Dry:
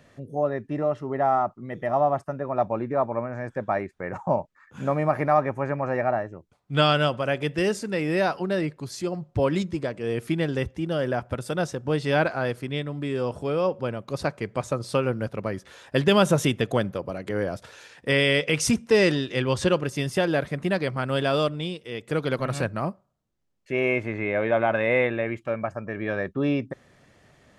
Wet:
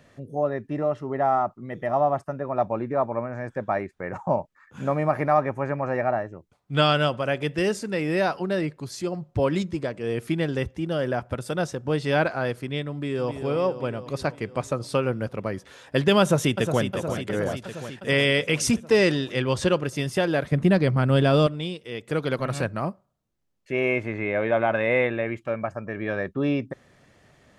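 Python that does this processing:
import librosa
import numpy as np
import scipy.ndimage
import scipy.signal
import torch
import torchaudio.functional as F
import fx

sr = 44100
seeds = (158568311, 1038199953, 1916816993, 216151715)

y = fx.echo_throw(x, sr, start_s=12.92, length_s=0.42, ms=260, feedback_pct=70, wet_db=-8.5)
y = fx.echo_throw(y, sr, start_s=16.21, length_s=0.61, ms=360, feedback_pct=70, wet_db=-8.0)
y = fx.low_shelf(y, sr, hz=320.0, db=11.5, at=(20.52, 21.47))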